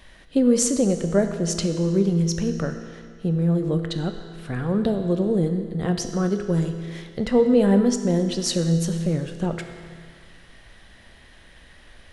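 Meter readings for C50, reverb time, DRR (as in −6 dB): 8.0 dB, 2.1 s, 6.5 dB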